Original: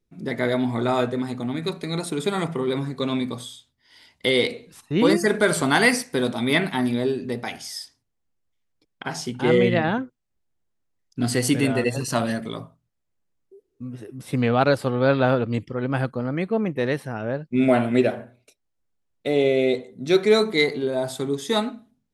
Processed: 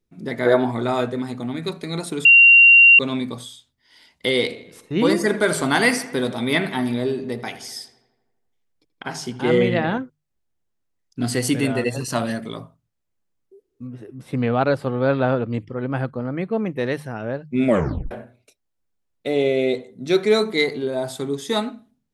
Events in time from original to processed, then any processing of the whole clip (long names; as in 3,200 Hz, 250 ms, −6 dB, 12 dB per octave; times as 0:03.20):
0:00.46–0:00.71: gain on a spectral selection 290–1,800 Hz +9 dB
0:02.25–0:02.99: beep over 2,760 Hz −6.5 dBFS
0:04.40–0:09.98: feedback echo with a low-pass in the loop 82 ms, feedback 65%, low-pass 3,700 Hz, level −15.5 dB
0:13.87–0:16.52: high-shelf EQ 3,500 Hz −10 dB
0:17.68: tape stop 0.43 s
whole clip: mains-hum notches 50/100/150 Hz